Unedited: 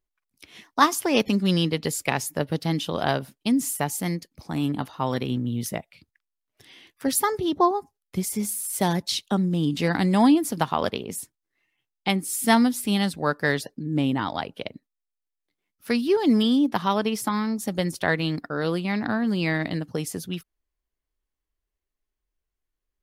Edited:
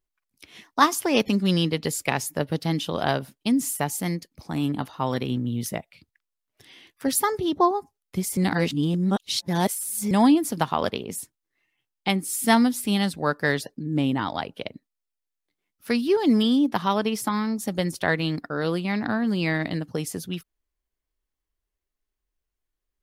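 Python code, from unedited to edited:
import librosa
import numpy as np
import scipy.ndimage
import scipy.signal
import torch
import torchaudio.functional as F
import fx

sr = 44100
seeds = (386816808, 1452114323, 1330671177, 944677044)

y = fx.edit(x, sr, fx.reverse_span(start_s=8.37, length_s=1.74), tone=tone)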